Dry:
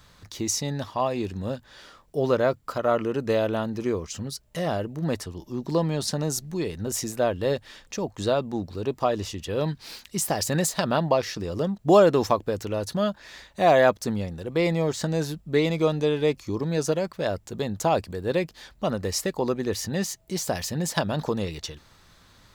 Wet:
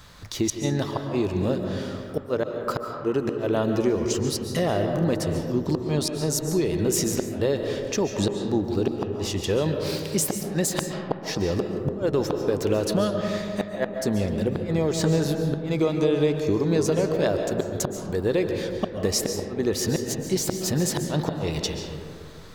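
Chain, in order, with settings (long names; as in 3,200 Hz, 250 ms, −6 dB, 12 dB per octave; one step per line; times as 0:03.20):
dynamic equaliser 370 Hz, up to +5 dB, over −37 dBFS, Q 2.5
downward compressor 5 to 1, threshold −26 dBFS, peak gain reduction 15 dB
gate with flip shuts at −18 dBFS, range −36 dB
comb and all-pass reverb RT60 2.3 s, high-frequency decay 0.3×, pre-delay 100 ms, DRR 4 dB
level +6 dB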